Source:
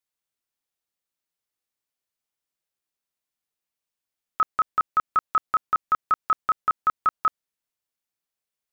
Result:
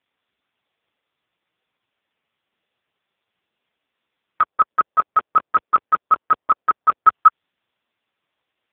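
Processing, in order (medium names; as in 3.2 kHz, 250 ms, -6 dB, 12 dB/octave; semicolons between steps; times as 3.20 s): compression 3:1, threshold -21 dBFS, peak gain reduction 3.5 dB; 4.41–7.07 s: band-pass filter 440 Hz, Q 0.96; loudness maximiser +22 dB; AMR-NB 5.15 kbps 8 kHz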